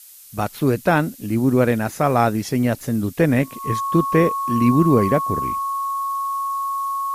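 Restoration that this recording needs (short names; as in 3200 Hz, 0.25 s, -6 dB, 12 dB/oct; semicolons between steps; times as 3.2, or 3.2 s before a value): notch 1100 Hz, Q 30; denoiser 27 dB, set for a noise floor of -38 dBFS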